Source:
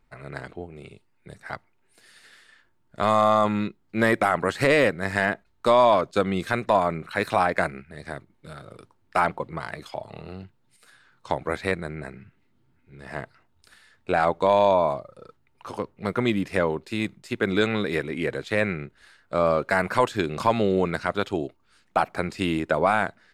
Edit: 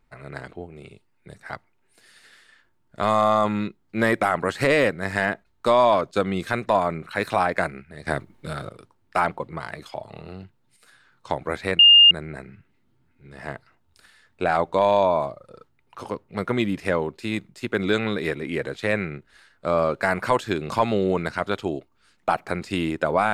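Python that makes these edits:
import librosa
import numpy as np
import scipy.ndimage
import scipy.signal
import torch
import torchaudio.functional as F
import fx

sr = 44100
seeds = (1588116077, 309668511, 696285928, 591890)

y = fx.edit(x, sr, fx.clip_gain(start_s=8.07, length_s=0.62, db=9.5),
    fx.insert_tone(at_s=11.79, length_s=0.32, hz=2820.0, db=-8.0), tone=tone)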